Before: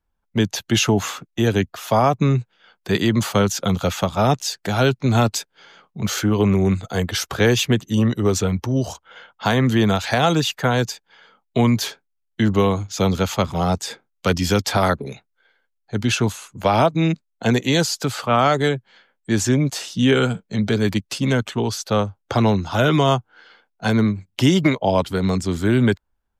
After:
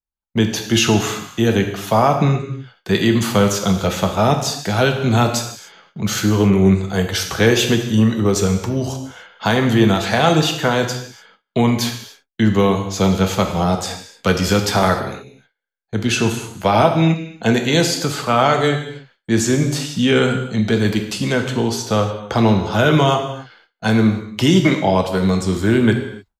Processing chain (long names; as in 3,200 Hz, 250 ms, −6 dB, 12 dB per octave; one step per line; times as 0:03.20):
reverb whose tail is shaped and stops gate 320 ms falling, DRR 3.5 dB
noise gate with hold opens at −39 dBFS
level +1.5 dB